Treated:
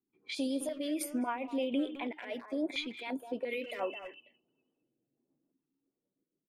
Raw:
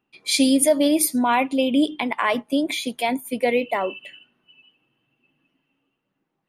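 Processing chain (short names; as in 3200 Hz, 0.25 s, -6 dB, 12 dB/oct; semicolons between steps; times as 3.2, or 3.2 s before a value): tone controls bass -14 dB, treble -12 dB, from 3.49 s treble +3 dB; low-pass opened by the level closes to 400 Hz, open at -22.5 dBFS; compressor 5:1, threshold -26 dBFS, peak gain reduction 11.5 dB; limiter -23.5 dBFS, peak gain reduction 10.5 dB; rotary speaker horn 6.7 Hz; speakerphone echo 0.21 s, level -10 dB; stepped notch 2.9 Hz 600–5500 Hz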